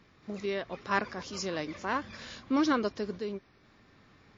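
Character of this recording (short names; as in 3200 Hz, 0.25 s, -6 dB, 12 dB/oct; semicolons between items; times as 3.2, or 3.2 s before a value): random-step tremolo 4.4 Hz; MP3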